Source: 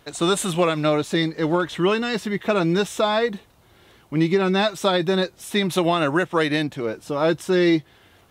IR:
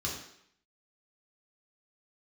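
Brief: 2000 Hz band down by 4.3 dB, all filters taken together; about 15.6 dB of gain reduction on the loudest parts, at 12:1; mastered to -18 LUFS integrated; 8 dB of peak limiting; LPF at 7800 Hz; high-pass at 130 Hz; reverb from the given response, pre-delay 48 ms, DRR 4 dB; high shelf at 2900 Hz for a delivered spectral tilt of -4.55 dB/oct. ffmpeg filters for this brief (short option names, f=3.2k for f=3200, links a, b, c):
-filter_complex "[0:a]highpass=130,lowpass=7.8k,equalizer=f=2k:t=o:g=-8.5,highshelf=f=2.9k:g=7,acompressor=threshold=-31dB:ratio=12,alimiter=level_in=2.5dB:limit=-24dB:level=0:latency=1,volume=-2.5dB,asplit=2[a][b];[1:a]atrim=start_sample=2205,adelay=48[c];[b][c]afir=irnorm=-1:irlink=0,volume=-8.5dB[d];[a][d]amix=inputs=2:normalize=0,volume=16.5dB"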